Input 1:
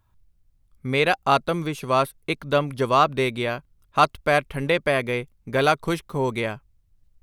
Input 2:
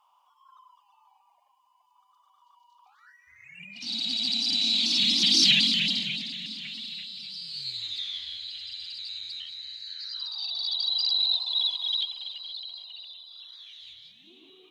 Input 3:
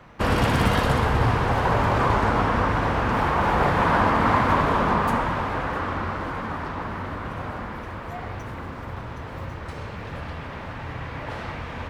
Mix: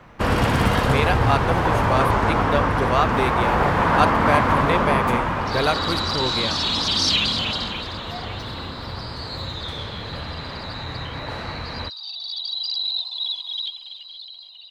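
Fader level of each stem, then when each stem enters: −2.5, −0.5, +1.5 decibels; 0.00, 1.65, 0.00 seconds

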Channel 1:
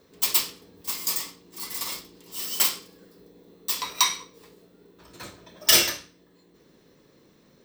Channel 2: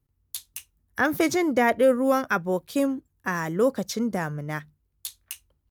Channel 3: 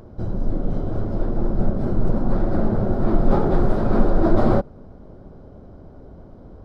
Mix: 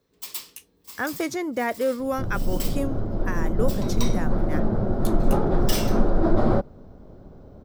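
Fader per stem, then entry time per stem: −12.5, −5.0, −3.0 decibels; 0.00, 0.00, 2.00 seconds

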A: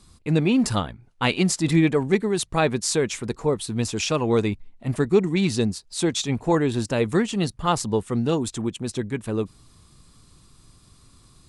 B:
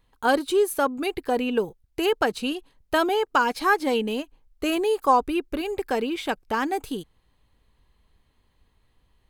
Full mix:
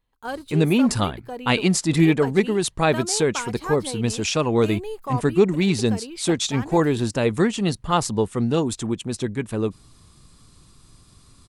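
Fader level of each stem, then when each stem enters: +1.5, −10.0 decibels; 0.25, 0.00 seconds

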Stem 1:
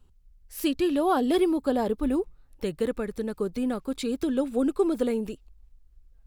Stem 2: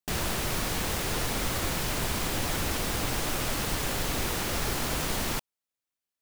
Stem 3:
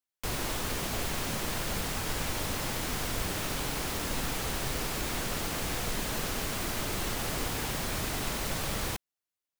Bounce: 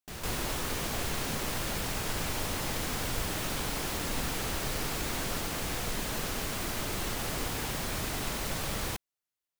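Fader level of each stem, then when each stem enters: muted, −11.5 dB, −1.0 dB; muted, 0.00 s, 0.00 s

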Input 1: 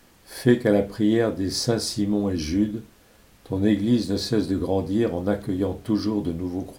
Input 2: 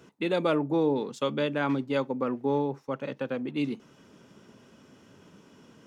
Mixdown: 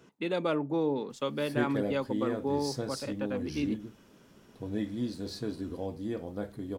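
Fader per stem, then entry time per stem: −13.0, −4.0 decibels; 1.10, 0.00 seconds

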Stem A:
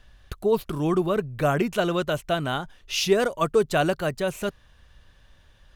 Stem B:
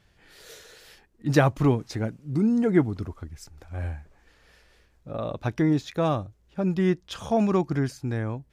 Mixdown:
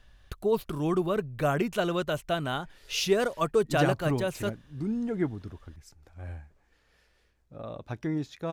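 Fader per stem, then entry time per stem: −4.0, −8.5 decibels; 0.00, 2.45 seconds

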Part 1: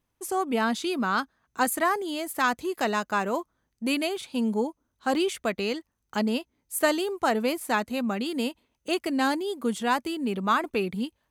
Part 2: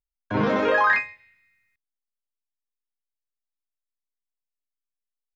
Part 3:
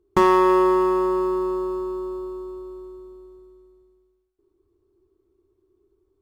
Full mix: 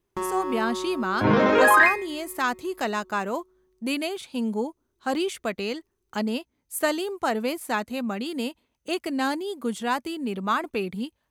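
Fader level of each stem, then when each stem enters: −1.0, +3.0, −13.5 decibels; 0.00, 0.90, 0.00 seconds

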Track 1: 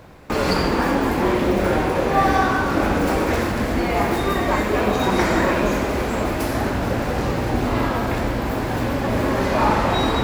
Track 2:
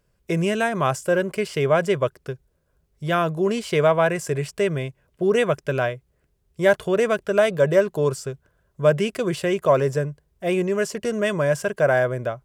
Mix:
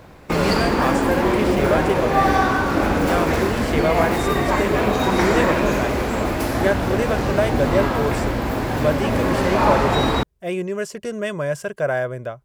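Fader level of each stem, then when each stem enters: +0.5, −3.0 decibels; 0.00, 0.00 seconds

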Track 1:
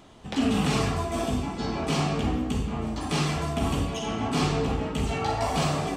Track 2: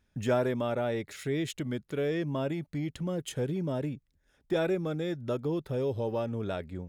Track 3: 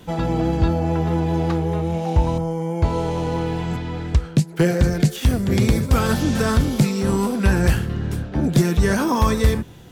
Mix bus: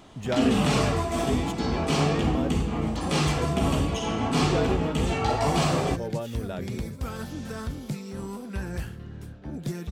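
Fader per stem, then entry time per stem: +1.5, −1.5, −15.5 decibels; 0.00, 0.00, 1.10 seconds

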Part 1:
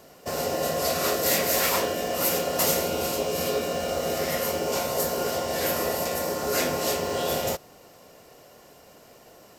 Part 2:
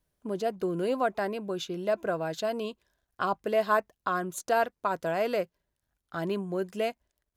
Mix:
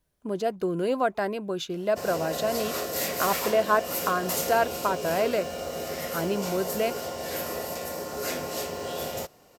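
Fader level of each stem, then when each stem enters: −6.0, +2.5 decibels; 1.70, 0.00 seconds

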